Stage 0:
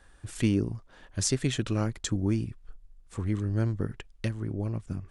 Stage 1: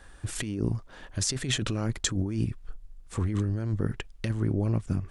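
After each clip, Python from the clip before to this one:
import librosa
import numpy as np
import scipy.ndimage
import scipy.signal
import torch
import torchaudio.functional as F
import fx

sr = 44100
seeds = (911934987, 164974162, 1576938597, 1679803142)

y = fx.over_compress(x, sr, threshold_db=-31.0, ratio=-1.0)
y = y * librosa.db_to_amplitude(3.5)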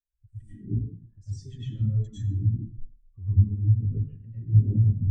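y = fx.rev_plate(x, sr, seeds[0], rt60_s=1.2, hf_ratio=0.75, predelay_ms=80, drr_db=-7.0)
y = fx.spectral_expand(y, sr, expansion=2.5)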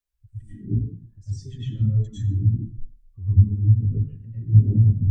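y = fx.doppler_dist(x, sr, depth_ms=0.23)
y = y * librosa.db_to_amplitude(4.5)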